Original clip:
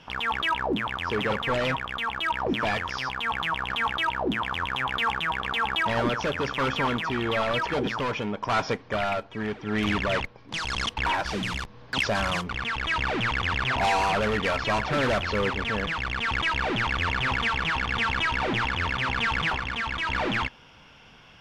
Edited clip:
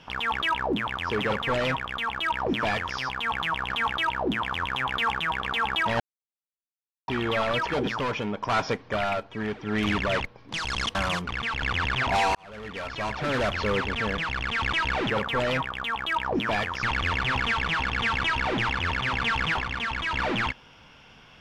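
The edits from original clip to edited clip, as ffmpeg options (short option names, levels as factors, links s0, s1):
-filter_complex "[0:a]asplit=8[s0][s1][s2][s3][s4][s5][s6][s7];[s0]atrim=end=6,asetpts=PTS-STARTPTS,afade=t=out:st=5.996:d=0.004:c=hsin[s8];[s1]atrim=start=6:end=7.08,asetpts=PTS-STARTPTS,volume=0[s9];[s2]atrim=start=7.08:end=10.952,asetpts=PTS-STARTPTS,afade=t=in:d=0.004:c=hsin[s10];[s3]atrim=start=12.168:end=12.842[s11];[s4]atrim=start=13.308:end=14.04,asetpts=PTS-STARTPTS,afade=t=out:st=0.728:d=0.004:c=hsin[s12];[s5]atrim=start=14.04:end=16.792,asetpts=PTS-STARTPTS,afade=t=in:d=1.26[s13];[s6]atrim=start=1.238:end=2.972[s14];[s7]atrim=start=16.788[s15];[s8][s9][s10]concat=n=3:v=0:a=1[s16];[s16][s11]acrossfade=d=0.004:c1=hsin:c2=hsin[s17];[s12][s13]concat=n=2:v=0:a=1[s18];[s17][s18]acrossfade=d=0.004:c1=hsin:c2=hsin[s19];[s19][s14]acrossfade=d=0.004:c1=hsin:c2=hsin[s20];[s20][s15]acrossfade=d=0.004:c1=hsin:c2=hsin"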